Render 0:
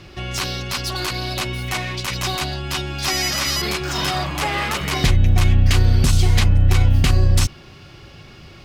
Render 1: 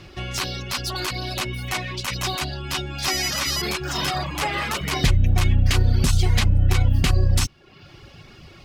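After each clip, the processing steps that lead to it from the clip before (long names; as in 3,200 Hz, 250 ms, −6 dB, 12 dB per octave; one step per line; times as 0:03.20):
reverb reduction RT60 0.64 s
level −1.5 dB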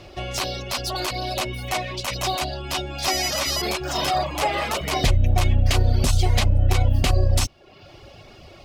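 graphic EQ with 15 bands 160 Hz −6 dB, 630 Hz +10 dB, 1,600 Hz −4 dB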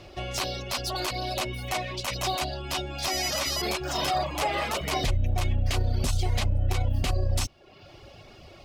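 brickwall limiter −13.5 dBFS, peak gain reduction 5.5 dB
level −3.5 dB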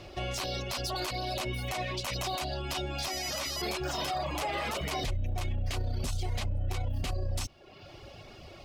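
brickwall limiter −24.5 dBFS, peak gain reduction 7.5 dB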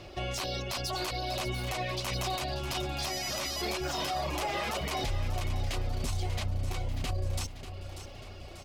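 repeating echo 590 ms, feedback 54%, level −11 dB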